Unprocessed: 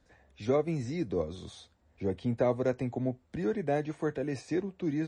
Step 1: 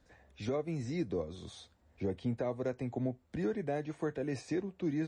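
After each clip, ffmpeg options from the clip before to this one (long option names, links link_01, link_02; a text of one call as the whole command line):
ffmpeg -i in.wav -af "alimiter=level_in=1dB:limit=-24dB:level=0:latency=1:release=490,volume=-1dB" out.wav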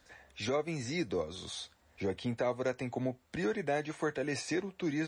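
ffmpeg -i in.wav -af "tiltshelf=frequency=650:gain=-6.5,volume=4dB" out.wav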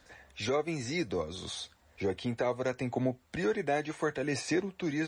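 ffmpeg -i in.wav -af "aphaser=in_gain=1:out_gain=1:delay=2.9:decay=0.22:speed=0.67:type=sinusoidal,volume=2dB" out.wav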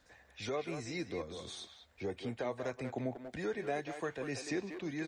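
ffmpeg -i in.wav -filter_complex "[0:a]asplit=2[link_01][link_02];[link_02]adelay=190,highpass=300,lowpass=3400,asoftclip=type=hard:threshold=-27.5dB,volume=-6dB[link_03];[link_01][link_03]amix=inputs=2:normalize=0,volume=-7dB" out.wav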